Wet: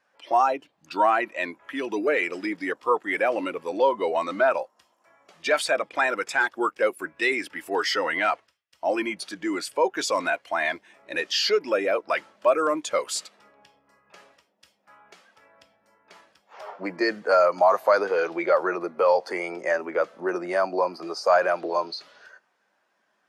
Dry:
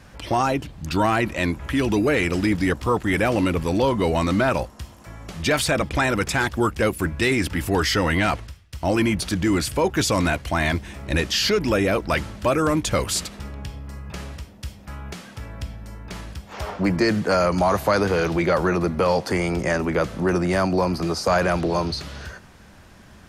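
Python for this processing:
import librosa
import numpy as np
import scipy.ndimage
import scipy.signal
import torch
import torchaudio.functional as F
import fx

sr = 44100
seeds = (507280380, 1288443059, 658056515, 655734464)

y = scipy.signal.sosfilt(scipy.signal.butter(2, 490.0, 'highpass', fs=sr, output='sos'), x)
y = fx.spectral_expand(y, sr, expansion=1.5)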